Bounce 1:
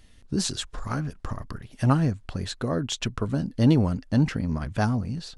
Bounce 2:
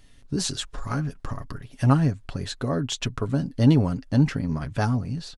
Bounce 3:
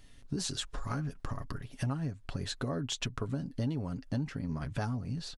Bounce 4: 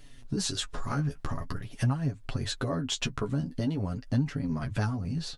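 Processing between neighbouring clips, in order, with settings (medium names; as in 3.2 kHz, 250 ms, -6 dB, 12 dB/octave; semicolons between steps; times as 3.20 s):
comb 7.2 ms, depth 38%
compression 5:1, threshold -29 dBFS, peak gain reduction 16 dB; trim -2.5 dB
flange 0.46 Hz, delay 6.7 ms, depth 7.6 ms, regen +20%; trim +8 dB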